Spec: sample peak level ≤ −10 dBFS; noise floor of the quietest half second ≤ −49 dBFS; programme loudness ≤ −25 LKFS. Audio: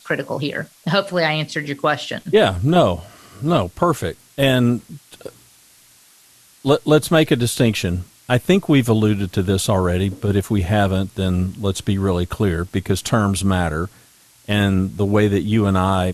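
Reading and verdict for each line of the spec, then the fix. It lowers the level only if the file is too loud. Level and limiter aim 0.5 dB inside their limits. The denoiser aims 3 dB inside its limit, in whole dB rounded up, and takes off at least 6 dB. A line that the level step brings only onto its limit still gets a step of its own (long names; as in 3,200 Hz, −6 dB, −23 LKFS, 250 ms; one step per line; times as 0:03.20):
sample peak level −3.5 dBFS: out of spec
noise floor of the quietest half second −51 dBFS: in spec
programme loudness −19.0 LKFS: out of spec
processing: level −6.5 dB
brickwall limiter −10.5 dBFS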